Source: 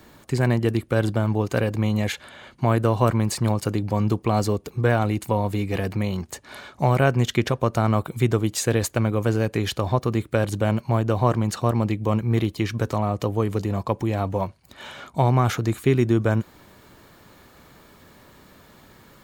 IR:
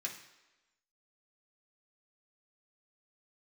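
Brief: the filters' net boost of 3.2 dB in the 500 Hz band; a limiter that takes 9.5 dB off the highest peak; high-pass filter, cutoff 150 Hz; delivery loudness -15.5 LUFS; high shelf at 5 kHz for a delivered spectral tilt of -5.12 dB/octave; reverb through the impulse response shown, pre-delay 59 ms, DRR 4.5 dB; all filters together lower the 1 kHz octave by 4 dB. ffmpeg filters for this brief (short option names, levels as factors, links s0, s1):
-filter_complex "[0:a]highpass=150,equalizer=f=500:t=o:g=6,equalizer=f=1000:t=o:g=-8.5,highshelf=f=5000:g=8.5,alimiter=limit=0.2:level=0:latency=1,asplit=2[s0][s1];[1:a]atrim=start_sample=2205,adelay=59[s2];[s1][s2]afir=irnorm=-1:irlink=0,volume=0.596[s3];[s0][s3]amix=inputs=2:normalize=0,volume=2.99"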